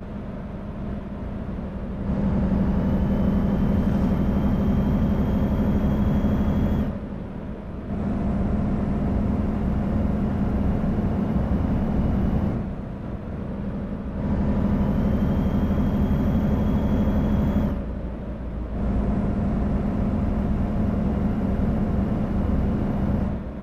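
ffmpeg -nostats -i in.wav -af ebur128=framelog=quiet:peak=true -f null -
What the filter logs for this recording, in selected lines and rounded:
Integrated loudness:
  I:         -24.5 LUFS
  Threshold: -34.5 LUFS
Loudness range:
  LRA:         3.6 LU
  Threshold: -44.3 LUFS
  LRA low:   -26.0 LUFS
  LRA high:  -22.4 LUFS
True peak:
  Peak:      -11.5 dBFS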